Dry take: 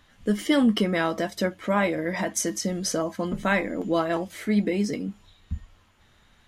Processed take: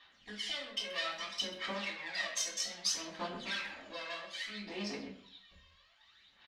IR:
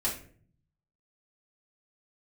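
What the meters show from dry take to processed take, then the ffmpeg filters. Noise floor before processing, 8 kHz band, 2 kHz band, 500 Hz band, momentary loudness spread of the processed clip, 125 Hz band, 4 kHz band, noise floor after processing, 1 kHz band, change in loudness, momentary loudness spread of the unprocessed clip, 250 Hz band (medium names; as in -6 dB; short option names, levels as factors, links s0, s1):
-60 dBFS, -7.0 dB, -9.5 dB, -19.0 dB, 10 LU, -23.5 dB, -1.5 dB, -66 dBFS, -14.5 dB, -12.0 dB, 10 LU, -23.5 dB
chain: -filter_complex "[0:a]acompressor=threshold=0.0562:ratio=6,aeval=exprs='clip(val(0),-1,0.0141)':c=same,aphaser=in_gain=1:out_gain=1:delay=1.9:decay=0.73:speed=0.62:type=sinusoidal,adynamicsmooth=sensitivity=7.5:basefreq=4100,bandpass=f=4100:t=q:w=1.8:csg=0,asplit=2[s0][s1];[s1]adelay=130,highpass=300,lowpass=3400,asoftclip=type=hard:threshold=0.0211,volume=0.282[s2];[s0][s2]amix=inputs=2:normalize=0[s3];[1:a]atrim=start_sample=2205,afade=t=out:st=0.4:d=0.01,atrim=end_sample=18081[s4];[s3][s4]afir=irnorm=-1:irlink=0"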